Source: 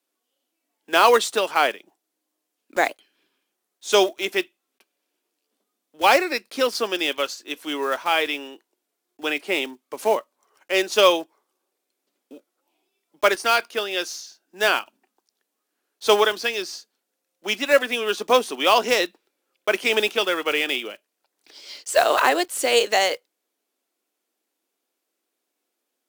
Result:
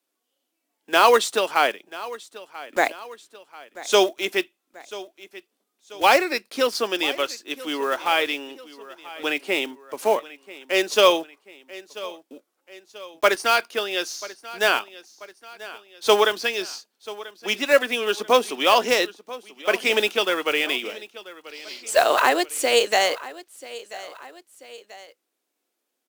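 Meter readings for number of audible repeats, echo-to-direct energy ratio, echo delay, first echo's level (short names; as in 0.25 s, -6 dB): 2, -17.0 dB, 0.987 s, -18.0 dB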